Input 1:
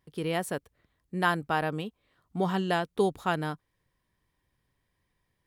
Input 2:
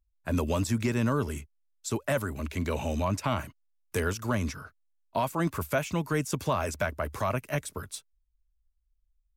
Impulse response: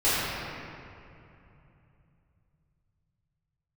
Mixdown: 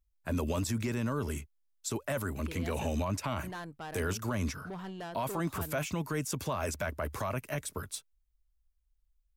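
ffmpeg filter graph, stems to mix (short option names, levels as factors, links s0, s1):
-filter_complex "[0:a]asoftclip=type=tanh:threshold=0.0473,adelay=2300,volume=0.316[s0];[1:a]highshelf=f=12000:g=3.5,volume=0.891[s1];[s0][s1]amix=inputs=2:normalize=0,alimiter=limit=0.0631:level=0:latency=1:release=23"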